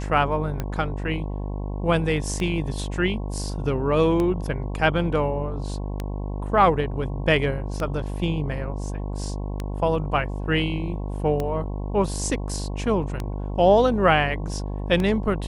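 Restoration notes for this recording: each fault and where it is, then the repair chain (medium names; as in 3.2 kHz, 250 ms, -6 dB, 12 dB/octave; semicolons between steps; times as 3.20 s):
buzz 50 Hz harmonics 22 -29 dBFS
tick 33 1/3 rpm -14 dBFS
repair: de-click; de-hum 50 Hz, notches 22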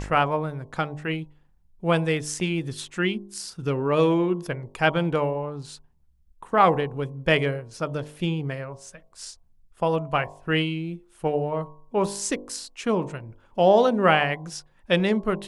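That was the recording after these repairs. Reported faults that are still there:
nothing left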